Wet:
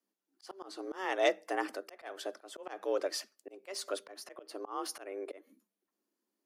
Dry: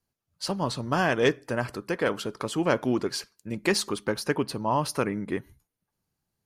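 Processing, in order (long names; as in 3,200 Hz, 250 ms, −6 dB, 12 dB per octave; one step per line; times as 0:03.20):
frequency shifter +190 Hz
volume swells 288 ms
level −5.5 dB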